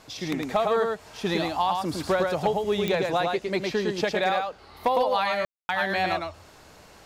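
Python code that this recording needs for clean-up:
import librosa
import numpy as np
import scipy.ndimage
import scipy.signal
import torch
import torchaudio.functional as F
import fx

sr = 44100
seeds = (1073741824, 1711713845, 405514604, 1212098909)

y = fx.fix_declip(x, sr, threshold_db=-14.5)
y = fx.fix_declick_ar(y, sr, threshold=10.0)
y = fx.fix_ambience(y, sr, seeds[0], print_start_s=6.5, print_end_s=7.0, start_s=5.45, end_s=5.69)
y = fx.fix_echo_inverse(y, sr, delay_ms=108, level_db=-3.5)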